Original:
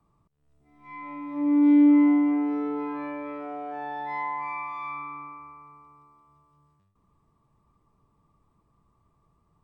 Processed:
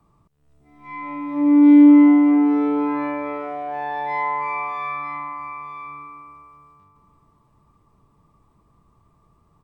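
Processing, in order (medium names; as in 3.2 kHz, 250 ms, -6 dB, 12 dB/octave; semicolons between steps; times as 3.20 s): delay 944 ms -10 dB; trim +7.5 dB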